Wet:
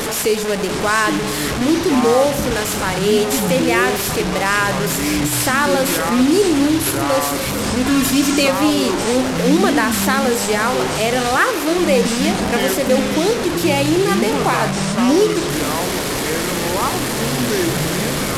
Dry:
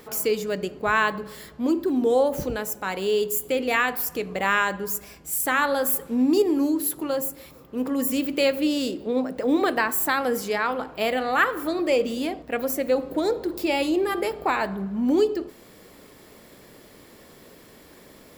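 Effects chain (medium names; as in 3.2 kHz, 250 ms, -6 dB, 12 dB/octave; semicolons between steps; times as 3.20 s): one-bit delta coder 64 kbps, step -23.5 dBFS; 7.85–8.48 s: comb 2.9 ms, depth 98%; in parallel at +0.5 dB: peak limiter -17.5 dBFS, peak gain reduction 9 dB; on the sum: ever faster or slower copies 706 ms, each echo -6 st, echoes 3, each echo -6 dB; 11.37–11.78 s: resonant low shelf 240 Hz -10 dB, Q 1.5; trim +1.5 dB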